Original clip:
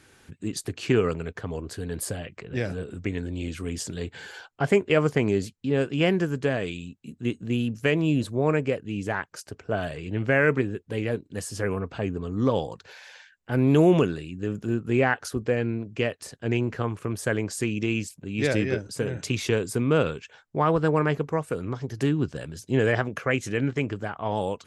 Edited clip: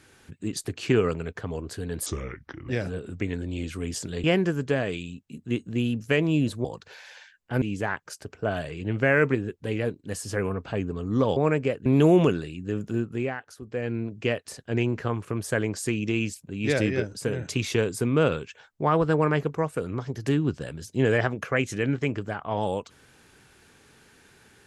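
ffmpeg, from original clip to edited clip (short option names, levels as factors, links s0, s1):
-filter_complex "[0:a]asplit=10[s0][s1][s2][s3][s4][s5][s6][s7][s8][s9];[s0]atrim=end=2.064[s10];[s1]atrim=start=2.06:end=2.53,asetpts=PTS-STARTPTS,asetrate=33075,aresample=44100[s11];[s2]atrim=start=2.526:end=4.082[s12];[s3]atrim=start=5.978:end=8.392[s13];[s4]atrim=start=12.628:end=13.602[s14];[s5]atrim=start=8.878:end=12.632[s15];[s6]atrim=start=8.388:end=8.882[s16];[s7]atrim=start=13.598:end=15.11,asetpts=PTS-STARTPTS,afade=t=out:st=1.082:d=0.43:silence=0.237137[s17];[s8]atrim=start=15.11:end=15.37,asetpts=PTS-STARTPTS,volume=0.237[s18];[s9]atrim=start=15.37,asetpts=PTS-STARTPTS,afade=t=in:d=0.43:silence=0.237137[s19];[s10][s11]acrossfade=d=0.004:c1=hsin:c2=hsin[s20];[s20][s12]acrossfade=d=0.004:c1=hsin:c2=hsin[s21];[s21][s13]acrossfade=d=0.004:c1=hsin:c2=hsin[s22];[s22][s14]acrossfade=d=0.004:c1=hsin:c2=hsin[s23];[s23][s15]acrossfade=d=0.004:c1=hsin:c2=hsin[s24];[s24][s16]acrossfade=d=0.004:c1=hsin:c2=hsin[s25];[s17][s18][s19]concat=n=3:v=0:a=1[s26];[s25][s26]acrossfade=d=0.004:c1=hsin:c2=hsin"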